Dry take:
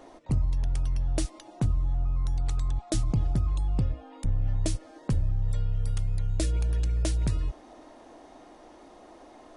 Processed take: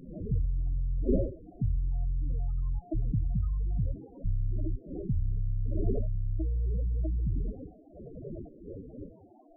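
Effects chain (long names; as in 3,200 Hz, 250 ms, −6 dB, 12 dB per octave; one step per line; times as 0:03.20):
wind on the microphone 530 Hz −32 dBFS
spectral peaks only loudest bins 8
level −3.5 dB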